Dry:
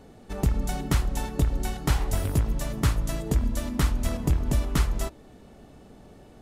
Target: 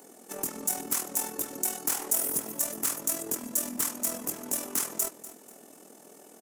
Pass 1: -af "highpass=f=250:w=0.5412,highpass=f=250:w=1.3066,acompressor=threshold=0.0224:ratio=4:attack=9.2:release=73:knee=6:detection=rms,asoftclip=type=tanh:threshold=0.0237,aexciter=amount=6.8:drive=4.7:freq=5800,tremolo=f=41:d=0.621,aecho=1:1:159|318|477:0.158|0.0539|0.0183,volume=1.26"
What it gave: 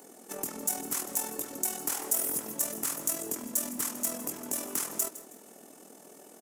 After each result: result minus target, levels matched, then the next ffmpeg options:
compression: peak gain reduction +8.5 dB; echo 85 ms early
-af "highpass=f=250:w=0.5412,highpass=f=250:w=1.3066,asoftclip=type=tanh:threshold=0.0237,aexciter=amount=6.8:drive=4.7:freq=5800,tremolo=f=41:d=0.621,aecho=1:1:159|318|477:0.158|0.0539|0.0183,volume=1.26"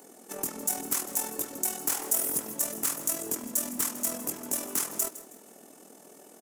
echo 85 ms early
-af "highpass=f=250:w=0.5412,highpass=f=250:w=1.3066,asoftclip=type=tanh:threshold=0.0237,aexciter=amount=6.8:drive=4.7:freq=5800,tremolo=f=41:d=0.621,aecho=1:1:244|488|732:0.158|0.0539|0.0183,volume=1.26"

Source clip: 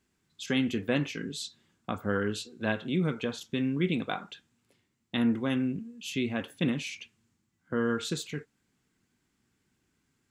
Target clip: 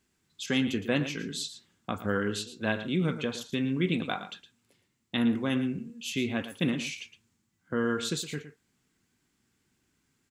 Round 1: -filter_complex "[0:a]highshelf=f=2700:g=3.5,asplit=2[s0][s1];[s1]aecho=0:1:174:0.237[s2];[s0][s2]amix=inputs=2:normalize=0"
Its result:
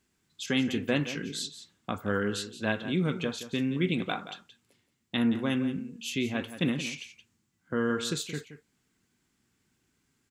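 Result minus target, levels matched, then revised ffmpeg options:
echo 60 ms late
-filter_complex "[0:a]highshelf=f=2700:g=3.5,asplit=2[s0][s1];[s1]aecho=0:1:114:0.237[s2];[s0][s2]amix=inputs=2:normalize=0"

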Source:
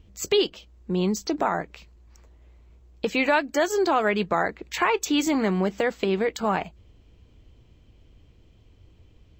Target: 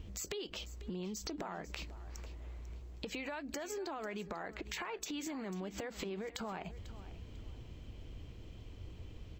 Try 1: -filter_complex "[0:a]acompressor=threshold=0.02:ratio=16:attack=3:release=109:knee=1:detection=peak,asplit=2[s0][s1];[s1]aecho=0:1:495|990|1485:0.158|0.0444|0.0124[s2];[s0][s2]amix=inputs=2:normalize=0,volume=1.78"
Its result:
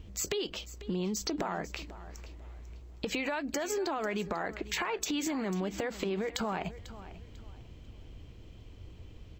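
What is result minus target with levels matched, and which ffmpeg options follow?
compression: peak gain reduction -8.5 dB
-filter_complex "[0:a]acompressor=threshold=0.00708:ratio=16:attack=3:release=109:knee=1:detection=peak,asplit=2[s0][s1];[s1]aecho=0:1:495|990|1485:0.158|0.0444|0.0124[s2];[s0][s2]amix=inputs=2:normalize=0,volume=1.78"

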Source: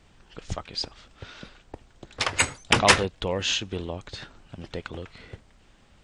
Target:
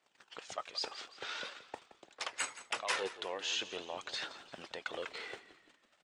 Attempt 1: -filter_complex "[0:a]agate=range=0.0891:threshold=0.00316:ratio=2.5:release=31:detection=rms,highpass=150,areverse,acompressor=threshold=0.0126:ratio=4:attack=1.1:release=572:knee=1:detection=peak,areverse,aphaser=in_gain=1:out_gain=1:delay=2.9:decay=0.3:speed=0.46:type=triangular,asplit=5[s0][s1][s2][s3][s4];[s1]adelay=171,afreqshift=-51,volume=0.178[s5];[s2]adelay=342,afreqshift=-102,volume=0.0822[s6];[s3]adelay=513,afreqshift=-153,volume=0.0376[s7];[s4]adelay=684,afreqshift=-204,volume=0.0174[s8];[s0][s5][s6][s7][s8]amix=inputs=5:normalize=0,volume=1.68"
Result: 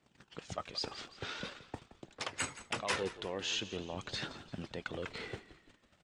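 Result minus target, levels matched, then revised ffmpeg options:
125 Hz band +18.0 dB
-filter_complex "[0:a]agate=range=0.0891:threshold=0.00316:ratio=2.5:release=31:detection=rms,highpass=580,areverse,acompressor=threshold=0.0126:ratio=4:attack=1.1:release=572:knee=1:detection=peak,areverse,aphaser=in_gain=1:out_gain=1:delay=2.9:decay=0.3:speed=0.46:type=triangular,asplit=5[s0][s1][s2][s3][s4];[s1]adelay=171,afreqshift=-51,volume=0.178[s5];[s2]adelay=342,afreqshift=-102,volume=0.0822[s6];[s3]adelay=513,afreqshift=-153,volume=0.0376[s7];[s4]adelay=684,afreqshift=-204,volume=0.0174[s8];[s0][s5][s6][s7][s8]amix=inputs=5:normalize=0,volume=1.68"

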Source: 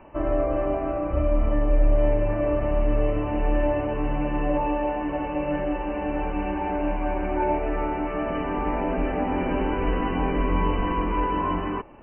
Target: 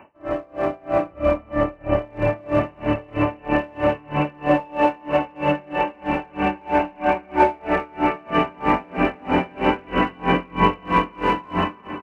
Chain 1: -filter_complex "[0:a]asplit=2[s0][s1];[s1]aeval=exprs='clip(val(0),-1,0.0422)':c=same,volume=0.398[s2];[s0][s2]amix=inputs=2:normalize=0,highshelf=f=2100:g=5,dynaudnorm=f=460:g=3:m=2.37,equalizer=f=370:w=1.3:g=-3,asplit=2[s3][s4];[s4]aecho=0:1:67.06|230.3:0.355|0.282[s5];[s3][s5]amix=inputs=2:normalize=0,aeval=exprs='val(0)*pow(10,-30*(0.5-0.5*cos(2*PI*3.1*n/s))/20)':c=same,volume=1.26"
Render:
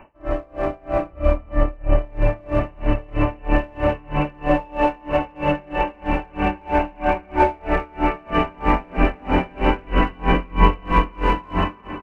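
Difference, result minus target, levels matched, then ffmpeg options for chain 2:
125 Hz band +4.0 dB
-filter_complex "[0:a]asplit=2[s0][s1];[s1]aeval=exprs='clip(val(0),-1,0.0422)':c=same,volume=0.398[s2];[s0][s2]amix=inputs=2:normalize=0,highpass=120,highshelf=f=2100:g=5,dynaudnorm=f=460:g=3:m=2.37,equalizer=f=370:w=1.3:g=-3,asplit=2[s3][s4];[s4]aecho=0:1:67.06|230.3:0.355|0.282[s5];[s3][s5]amix=inputs=2:normalize=0,aeval=exprs='val(0)*pow(10,-30*(0.5-0.5*cos(2*PI*3.1*n/s))/20)':c=same,volume=1.26"

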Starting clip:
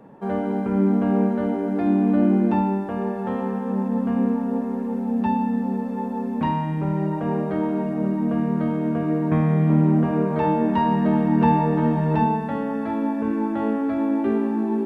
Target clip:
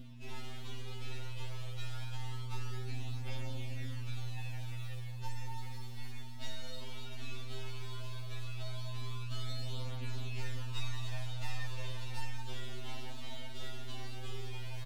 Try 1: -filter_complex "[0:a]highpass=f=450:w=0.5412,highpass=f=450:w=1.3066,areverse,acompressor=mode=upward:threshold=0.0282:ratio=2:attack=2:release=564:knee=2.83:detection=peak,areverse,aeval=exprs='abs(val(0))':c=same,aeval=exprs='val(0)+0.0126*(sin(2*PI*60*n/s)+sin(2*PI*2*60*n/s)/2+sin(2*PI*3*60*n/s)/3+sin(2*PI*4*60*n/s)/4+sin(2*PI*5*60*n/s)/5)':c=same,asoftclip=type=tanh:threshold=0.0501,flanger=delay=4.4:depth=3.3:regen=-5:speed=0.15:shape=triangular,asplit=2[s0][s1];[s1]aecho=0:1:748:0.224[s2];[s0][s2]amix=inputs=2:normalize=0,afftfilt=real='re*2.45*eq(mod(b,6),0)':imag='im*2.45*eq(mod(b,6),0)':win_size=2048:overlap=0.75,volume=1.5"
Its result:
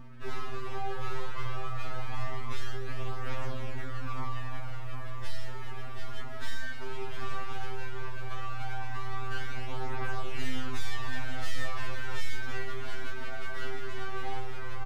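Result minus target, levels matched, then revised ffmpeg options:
2 kHz band +6.5 dB
-filter_complex "[0:a]highpass=f=1500:w=0.5412,highpass=f=1500:w=1.3066,areverse,acompressor=mode=upward:threshold=0.0282:ratio=2:attack=2:release=564:knee=2.83:detection=peak,areverse,aeval=exprs='abs(val(0))':c=same,aeval=exprs='val(0)+0.0126*(sin(2*PI*60*n/s)+sin(2*PI*2*60*n/s)/2+sin(2*PI*3*60*n/s)/3+sin(2*PI*4*60*n/s)/4+sin(2*PI*5*60*n/s)/5)':c=same,asoftclip=type=tanh:threshold=0.0501,flanger=delay=4.4:depth=3.3:regen=-5:speed=0.15:shape=triangular,asplit=2[s0][s1];[s1]aecho=0:1:748:0.224[s2];[s0][s2]amix=inputs=2:normalize=0,afftfilt=real='re*2.45*eq(mod(b,6),0)':imag='im*2.45*eq(mod(b,6),0)':win_size=2048:overlap=0.75,volume=1.5"

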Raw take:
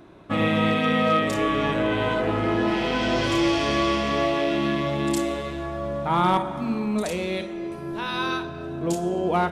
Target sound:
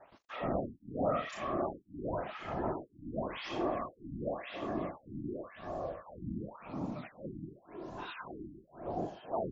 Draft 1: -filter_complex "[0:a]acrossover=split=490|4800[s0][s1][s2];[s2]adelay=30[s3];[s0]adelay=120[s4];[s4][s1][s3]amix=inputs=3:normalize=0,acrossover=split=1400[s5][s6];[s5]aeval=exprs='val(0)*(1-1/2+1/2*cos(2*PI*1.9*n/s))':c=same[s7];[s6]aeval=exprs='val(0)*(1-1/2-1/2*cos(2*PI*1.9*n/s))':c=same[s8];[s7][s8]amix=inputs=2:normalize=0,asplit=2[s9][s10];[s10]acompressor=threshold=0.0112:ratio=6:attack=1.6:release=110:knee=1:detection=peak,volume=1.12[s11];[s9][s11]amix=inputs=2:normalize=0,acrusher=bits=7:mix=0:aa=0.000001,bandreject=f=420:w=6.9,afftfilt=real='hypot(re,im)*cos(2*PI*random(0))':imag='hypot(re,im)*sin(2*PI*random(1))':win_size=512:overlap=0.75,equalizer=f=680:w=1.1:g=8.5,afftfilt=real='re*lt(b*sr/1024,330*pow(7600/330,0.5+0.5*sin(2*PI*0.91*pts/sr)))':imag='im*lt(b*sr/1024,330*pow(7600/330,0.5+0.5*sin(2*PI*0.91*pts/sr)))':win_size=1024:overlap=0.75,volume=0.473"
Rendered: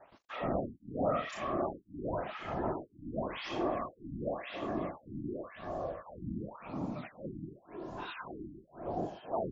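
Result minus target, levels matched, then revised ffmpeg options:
compression: peak gain reduction -5 dB
-filter_complex "[0:a]acrossover=split=490|4800[s0][s1][s2];[s2]adelay=30[s3];[s0]adelay=120[s4];[s4][s1][s3]amix=inputs=3:normalize=0,acrossover=split=1400[s5][s6];[s5]aeval=exprs='val(0)*(1-1/2+1/2*cos(2*PI*1.9*n/s))':c=same[s7];[s6]aeval=exprs='val(0)*(1-1/2-1/2*cos(2*PI*1.9*n/s))':c=same[s8];[s7][s8]amix=inputs=2:normalize=0,asplit=2[s9][s10];[s10]acompressor=threshold=0.00562:ratio=6:attack=1.6:release=110:knee=1:detection=peak,volume=1.12[s11];[s9][s11]amix=inputs=2:normalize=0,acrusher=bits=7:mix=0:aa=0.000001,bandreject=f=420:w=6.9,afftfilt=real='hypot(re,im)*cos(2*PI*random(0))':imag='hypot(re,im)*sin(2*PI*random(1))':win_size=512:overlap=0.75,equalizer=f=680:w=1.1:g=8.5,afftfilt=real='re*lt(b*sr/1024,330*pow(7600/330,0.5+0.5*sin(2*PI*0.91*pts/sr)))':imag='im*lt(b*sr/1024,330*pow(7600/330,0.5+0.5*sin(2*PI*0.91*pts/sr)))':win_size=1024:overlap=0.75,volume=0.473"

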